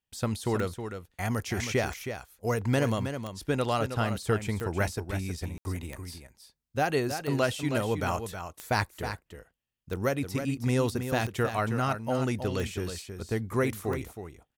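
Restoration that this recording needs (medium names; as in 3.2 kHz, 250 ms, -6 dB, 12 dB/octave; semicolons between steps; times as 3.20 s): de-click; room tone fill 5.58–5.65 s; inverse comb 318 ms -8.5 dB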